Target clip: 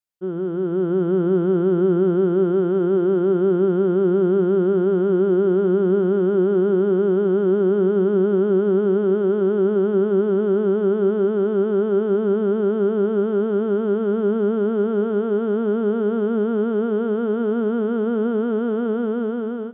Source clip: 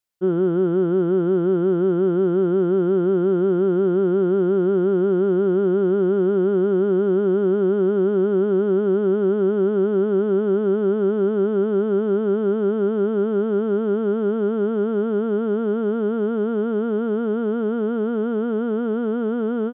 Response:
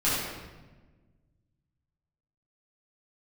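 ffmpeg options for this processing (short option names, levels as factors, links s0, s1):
-filter_complex "[0:a]dynaudnorm=f=310:g=5:m=2.51,asplit=2[s0][s1];[1:a]atrim=start_sample=2205,asetrate=28224,aresample=44100[s2];[s1][s2]afir=irnorm=-1:irlink=0,volume=0.0299[s3];[s0][s3]amix=inputs=2:normalize=0,volume=0.447"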